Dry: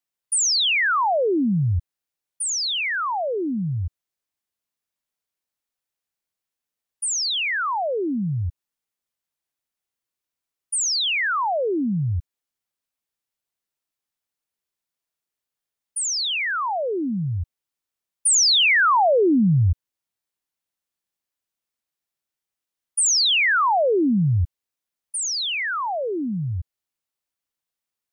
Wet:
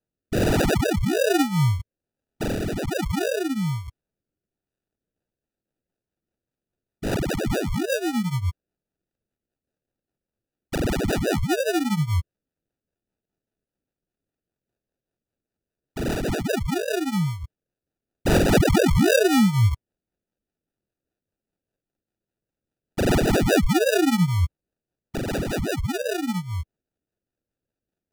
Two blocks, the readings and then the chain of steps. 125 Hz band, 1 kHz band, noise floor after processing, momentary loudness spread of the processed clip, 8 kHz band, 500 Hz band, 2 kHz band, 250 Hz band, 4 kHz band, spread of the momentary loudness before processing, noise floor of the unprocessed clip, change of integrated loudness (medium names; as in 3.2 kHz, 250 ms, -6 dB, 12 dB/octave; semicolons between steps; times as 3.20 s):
+1.5 dB, -7.0 dB, under -85 dBFS, 13 LU, -12.0 dB, +1.5 dB, -6.5 dB, +2.5 dB, -10.5 dB, 12 LU, under -85 dBFS, -2.5 dB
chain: flange 1.4 Hz, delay 10 ms, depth 8.4 ms, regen +1%; sample-and-hold 41×; rotary cabinet horn 1.2 Hz, later 5 Hz, at 4.74 s; trim +4 dB